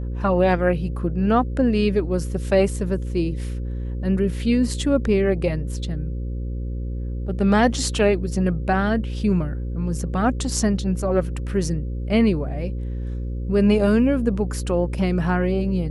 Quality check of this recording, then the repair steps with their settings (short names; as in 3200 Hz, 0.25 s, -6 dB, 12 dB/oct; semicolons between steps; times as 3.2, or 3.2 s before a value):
buzz 60 Hz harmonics 9 -27 dBFS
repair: de-hum 60 Hz, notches 9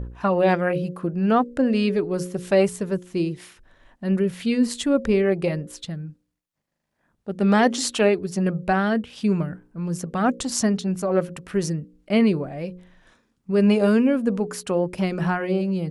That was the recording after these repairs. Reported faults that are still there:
none